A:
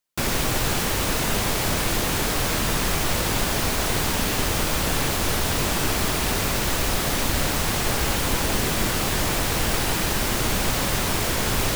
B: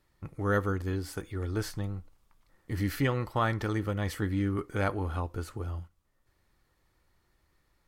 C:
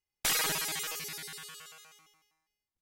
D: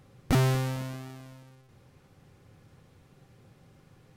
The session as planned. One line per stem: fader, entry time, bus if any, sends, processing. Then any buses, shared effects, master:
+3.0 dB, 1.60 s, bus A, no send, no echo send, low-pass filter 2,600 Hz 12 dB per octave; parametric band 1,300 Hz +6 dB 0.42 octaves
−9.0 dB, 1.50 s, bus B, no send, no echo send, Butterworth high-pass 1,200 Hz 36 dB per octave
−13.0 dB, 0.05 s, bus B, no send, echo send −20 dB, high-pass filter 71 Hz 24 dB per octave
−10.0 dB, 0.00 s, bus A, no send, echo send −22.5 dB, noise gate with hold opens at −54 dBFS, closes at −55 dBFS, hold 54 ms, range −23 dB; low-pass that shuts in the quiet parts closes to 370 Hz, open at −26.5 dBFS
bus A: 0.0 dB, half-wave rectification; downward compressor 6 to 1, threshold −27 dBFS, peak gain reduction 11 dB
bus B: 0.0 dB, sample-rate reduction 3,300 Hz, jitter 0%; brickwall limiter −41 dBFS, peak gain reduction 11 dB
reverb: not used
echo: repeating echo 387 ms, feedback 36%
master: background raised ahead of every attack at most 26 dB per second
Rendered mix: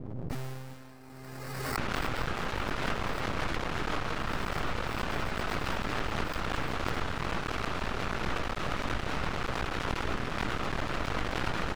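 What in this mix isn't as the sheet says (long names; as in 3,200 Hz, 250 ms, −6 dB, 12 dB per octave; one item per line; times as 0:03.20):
stem A +3.0 dB → −4.5 dB
stem C −13.0 dB → −22.0 dB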